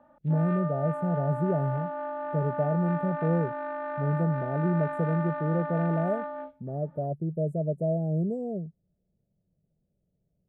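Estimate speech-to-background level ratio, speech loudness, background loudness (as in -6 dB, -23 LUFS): 5.5 dB, -29.0 LUFS, -34.5 LUFS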